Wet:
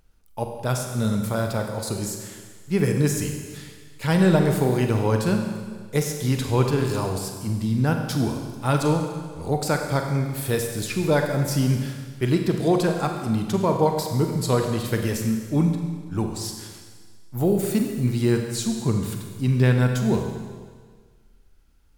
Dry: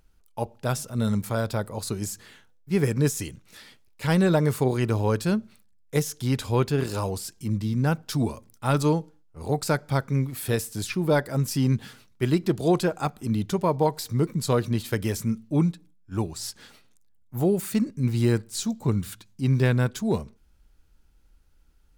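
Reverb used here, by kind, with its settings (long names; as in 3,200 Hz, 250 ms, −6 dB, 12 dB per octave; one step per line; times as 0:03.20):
four-comb reverb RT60 1.6 s, combs from 32 ms, DRR 3.5 dB
level +1 dB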